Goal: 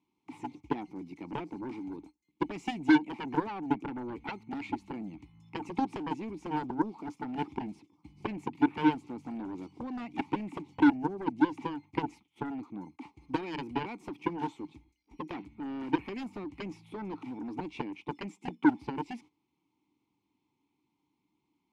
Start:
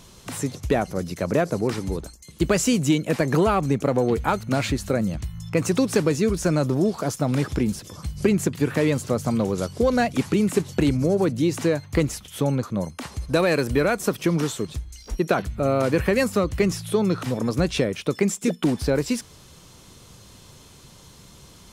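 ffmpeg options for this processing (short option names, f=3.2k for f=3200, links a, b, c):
-filter_complex "[0:a]agate=range=-15dB:threshold=-36dB:ratio=16:detection=peak,asplit=3[a][b][c];[a]bandpass=f=300:t=q:w=8,volume=0dB[d];[b]bandpass=f=870:t=q:w=8,volume=-6dB[e];[c]bandpass=f=2.24k:t=q:w=8,volume=-9dB[f];[d][e][f]amix=inputs=3:normalize=0,aeval=exprs='0.2*(cos(1*acos(clip(val(0)/0.2,-1,1)))-cos(1*PI/2))+0.0562*(cos(7*acos(clip(val(0)/0.2,-1,1)))-cos(7*PI/2))':c=same"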